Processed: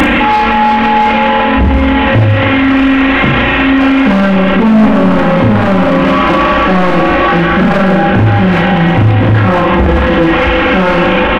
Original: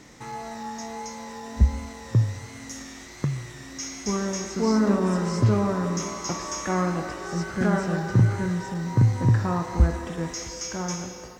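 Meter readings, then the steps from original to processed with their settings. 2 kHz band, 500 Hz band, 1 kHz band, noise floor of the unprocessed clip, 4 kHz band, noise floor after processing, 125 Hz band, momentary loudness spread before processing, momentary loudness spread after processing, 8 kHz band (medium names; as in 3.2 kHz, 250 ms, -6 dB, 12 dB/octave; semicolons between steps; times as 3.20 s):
+25.0 dB, +18.5 dB, +22.5 dB, -42 dBFS, +19.5 dB, -10 dBFS, +12.0 dB, 15 LU, 1 LU, no reading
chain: one-bit delta coder 16 kbps, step -35 dBFS; comb 3.7 ms, depth 88%; in parallel at +2.5 dB: gain riding within 4 dB 0.5 s; on the sum: saturation -16 dBFS, distortion -7 dB; Schroeder reverb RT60 1 s, combs from 26 ms, DRR 8 dB; hard clipper -17 dBFS, distortion -19 dB; on a send: early reflections 37 ms -3.5 dB, 58 ms -7.5 dB; on the sum: loudness maximiser +33.5 dB; trim -1 dB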